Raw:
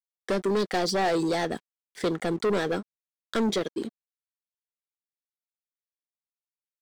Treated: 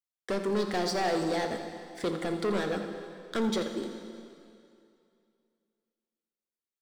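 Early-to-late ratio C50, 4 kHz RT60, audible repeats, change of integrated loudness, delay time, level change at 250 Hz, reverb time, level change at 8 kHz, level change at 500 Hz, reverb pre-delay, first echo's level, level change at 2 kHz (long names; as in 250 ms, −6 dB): 6.0 dB, 2.3 s, 1, −4.0 dB, 84 ms, −3.0 dB, 2.5 s, −3.5 dB, −3.5 dB, 8 ms, −12.5 dB, −3.5 dB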